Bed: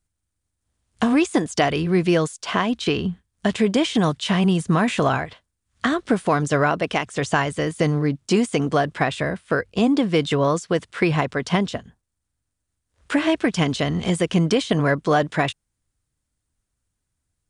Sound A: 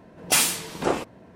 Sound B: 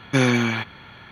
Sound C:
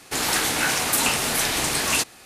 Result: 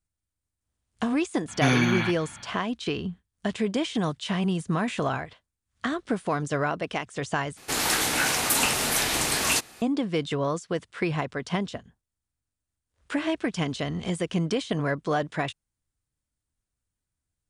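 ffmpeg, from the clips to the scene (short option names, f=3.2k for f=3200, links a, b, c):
-filter_complex "[0:a]volume=-7.5dB[a];[2:a]equalizer=f=440:t=o:w=0.33:g=-14[b];[a]asplit=2[c][d];[c]atrim=end=7.574[e];[3:a]atrim=end=2.25,asetpts=PTS-STARTPTS,volume=-2dB[f];[d]atrim=start=9.816[g];[b]atrim=end=1.11,asetpts=PTS-STARTPTS,volume=-2.5dB,afade=t=in:d=0.004:c=hsin,afade=t=out:st=1.106:d=0.004:c=hsin,adelay=1480[h];[e][f]acrossfade=d=0.004:c1=hsin:c2=hsin[i];[i][g]acrossfade=d=0.004:c1=hsin:c2=hsin[j];[j][h]amix=inputs=2:normalize=0"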